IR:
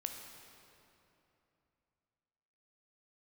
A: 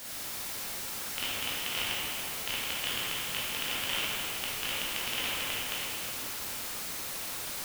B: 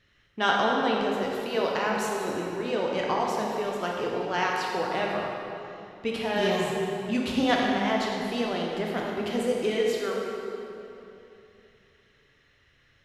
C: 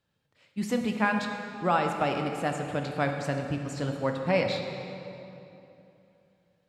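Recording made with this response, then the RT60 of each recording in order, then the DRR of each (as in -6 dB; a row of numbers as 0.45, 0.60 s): C; 2.9, 2.9, 2.9 s; -8.0, -2.5, 3.5 dB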